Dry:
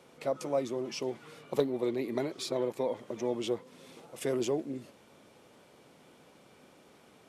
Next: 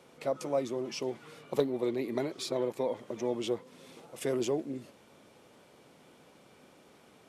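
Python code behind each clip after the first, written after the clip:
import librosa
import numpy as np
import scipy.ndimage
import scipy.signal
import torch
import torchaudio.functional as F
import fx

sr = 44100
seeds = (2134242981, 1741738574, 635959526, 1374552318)

y = x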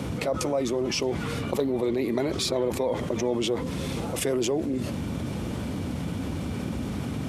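y = fx.dmg_noise_band(x, sr, seeds[0], low_hz=58.0, high_hz=280.0, level_db=-50.0)
y = fx.env_flatten(y, sr, amount_pct=70)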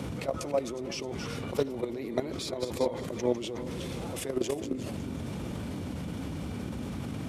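y = fx.reverse_delay_fb(x, sr, ms=182, feedback_pct=55, wet_db=-9.5)
y = fx.level_steps(y, sr, step_db=12)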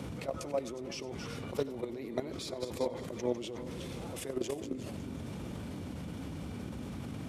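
y = x + 10.0 ** (-21.5 / 20.0) * np.pad(x, (int(93 * sr / 1000.0), 0))[:len(x)]
y = y * 10.0 ** (-5.0 / 20.0)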